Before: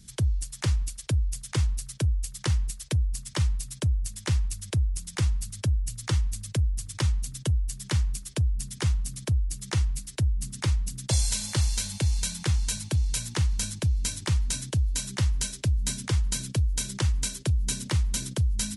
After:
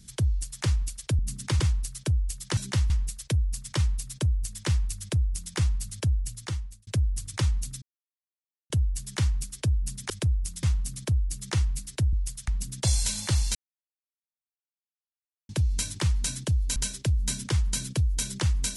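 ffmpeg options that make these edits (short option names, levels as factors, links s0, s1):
-filter_complex "[0:a]asplit=14[s0][s1][s2][s3][s4][s5][s6][s7][s8][s9][s10][s11][s12][s13];[s0]atrim=end=1.192[s14];[s1]atrim=start=10.328:end=10.742[s15];[s2]atrim=start=1.538:end=2.512[s16];[s3]atrim=start=15.018:end=15.352[s17];[s4]atrim=start=2.508:end=6.48,asetpts=PTS-STARTPTS,afade=t=out:st=3.262:d=0.71[s18];[s5]atrim=start=6.48:end=7.43,asetpts=PTS-STARTPTS,afade=t=in:d=0.004:c=hsin,afade=t=out:st=0.946:d=0.004:c=hsin,apad=pad_dur=0.88[s19];[s6]atrim=start=7.43:end=8.832,asetpts=PTS-STARTPTS,afade=t=in:d=0.004:c=hsin[s20];[s7]atrim=start=4.608:end=5.142[s21];[s8]atrim=start=8.828:end=10.332[s22];[s9]atrim=start=1.188:end=1.542[s23];[s10]atrim=start=10.738:end=11.81,asetpts=PTS-STARTPTS,afade=t=out:st=1.068:d=0.004:c=hsin[s24];[s11]atrim=start=11.81:end=13.75,asetpts=PTS-STARTPTS,volume=0[s25];[s12]atrim=start=13.75:end=15.022,asetpts=PTS-STARTPTS,afade=t=in:d=0.004:c=hsin[s26];[s13]atrim=start=15.348[s27];[s14][s15]acrossfade=d=0.004:c1=hsin:c2=hsin[s28];[s28][s16]acrossfade=d=0.004:c1=hsin:c2=hsin[s29];[s29][s17]acrossfade=d=0.004:c1=hsin:c2=hsin[s30];[s18][s19][s20]concat=n=3:v=0:a=1[s31];[s30][s31]acrossfade=d=0.004:c1=hsin:c2=hsin[s32];[s32][s21]acrossfade=d=0.004:c1=hsin:c2=hsin[s33];[s33][s22]acrossfade=d=0.004:c1=hsin:c2=hsin[s34];[s34][s23]acrossfade=d=0.004:c1=hsin:c2=hsin[s35];[s24][s25][s26]concat=n=3:v=0:a=1[s36];[s35][s36]acrossfade=d=0.004:c1=hsin:c2=hsin[s37];[s37][s27]acrossfade=d=0.004:c1=hsin:c2=hsin"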